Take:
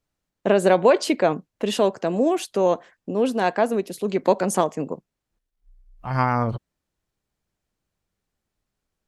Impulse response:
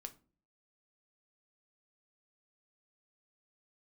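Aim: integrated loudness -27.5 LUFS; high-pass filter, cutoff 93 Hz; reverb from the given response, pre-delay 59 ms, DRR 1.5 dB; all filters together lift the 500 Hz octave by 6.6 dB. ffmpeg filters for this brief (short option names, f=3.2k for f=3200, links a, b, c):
-filter_complex "[0:a]highpass=93,equalizer=f=500:t=o:g=8,asplit=2[a][b];[1:a]atrim=start_sample=2205,adelay=59[c];[b][c]afir=irnorm=-1:irlink=0,volume=3.5dB[d];[a][d]amix=inputs=2:normalize=0,volume=-13dB"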